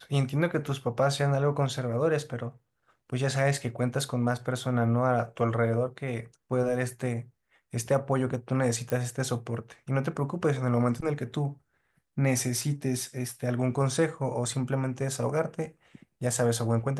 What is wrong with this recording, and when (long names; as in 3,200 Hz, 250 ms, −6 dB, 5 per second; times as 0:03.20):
0:08.90: click −18 dBFS